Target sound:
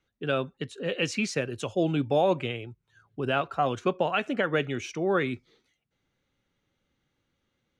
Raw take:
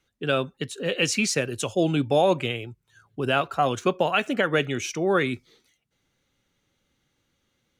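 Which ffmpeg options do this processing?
ffmpeg -i in.wav -af "aemphasis=mode=reproduction:type=50fm,volume=-3.5dB" out.wav

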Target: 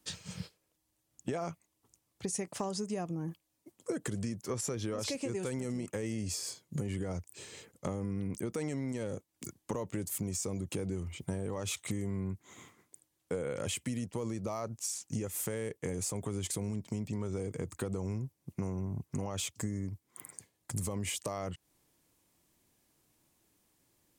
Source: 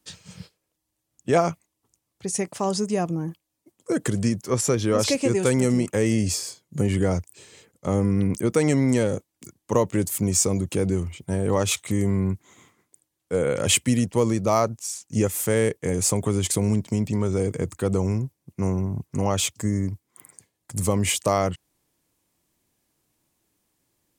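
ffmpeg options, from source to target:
ffmpeg -i in.wav -af "alimiter=limit=-13.5dB:level=0:latency=1:release=29,acompressor=threshold=-33dB:ratio=8" out.wav

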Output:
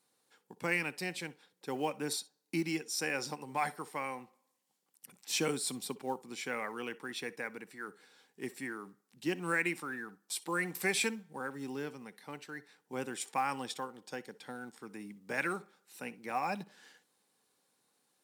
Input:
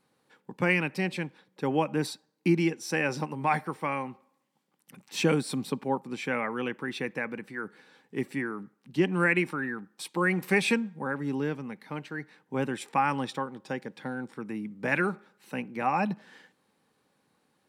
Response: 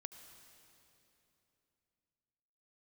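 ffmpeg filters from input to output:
-filter_complex "[0:a]bass=frequency=250:gain=-8,treble=frequency=4000:gain=12,acrusher=bits=7:mode=log:mix=0:aa=0.000001,asetrate=42777,aresample=44100[link_01];[1:a]atrim=start_sample=2205,atrim=end_sample=3528,asetrate=52920,aresample=44100[link_02];[link_01][link_02]afir=irnorm=-1:irlink=0"

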